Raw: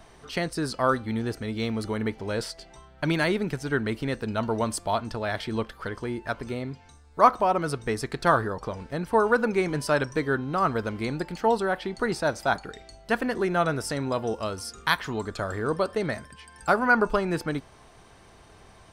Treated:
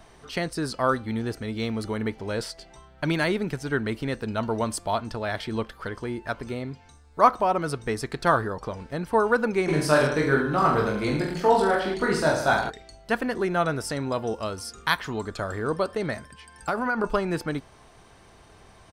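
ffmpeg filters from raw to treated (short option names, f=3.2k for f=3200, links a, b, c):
-filter_complex "[0:a]asplit=3[a][b][c];[a]afade=t=out:st=9.67:d=0.02[d];[b]aecho=1:1:20|44|72.8|107.4|148.8|198.6:0.794|0.631|0.501|0.398|0.316|0.251,afade=t=in:st=9.67:d=0.02,afade=t=out:st=12.69:d=0.02[e];[c]afade=t=in:st=12.69:d=0.02[f];[d][e][f]amix=inputs=3:normalize=0,asettb=1/sr,asplit=3[g][h][i];[g]atrim=end=15.964[j];[h]atrim=start=15.96:end=17.04,asetpts=PTS-STARTPTS,afade=t=in:d=0.004:c=qsin,afade=t=out:st=1.076:d=0.004:c=qsin,acompressor=threshold=-21dB:ratio=6:attack=3.2:release=140:knee=1:detection=peak[k];[i]atrim=start=17.036[l];[j][k]acrossfade=d=0.004:c1=hsin:c2=qsin[m];[m][l]acrossfade=d=0.004:c1=qsin:c2=hsin"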